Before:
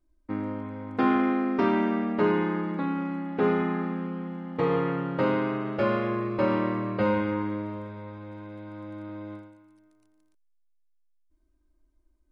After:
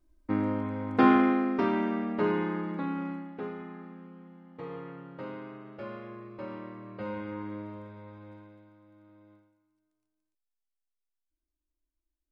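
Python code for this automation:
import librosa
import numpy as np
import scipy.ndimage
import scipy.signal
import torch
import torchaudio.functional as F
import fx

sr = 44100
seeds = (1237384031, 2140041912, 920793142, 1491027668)

y = fx.gain(x, sr, db=fx.line((1.04, 3.0), (1.68, -4.0), (3.1, -4.0), (3.51, -15.5), (6.77, -15.5), (7.58, -7.0), (8.32, -7.0), (8.8, -19.0)))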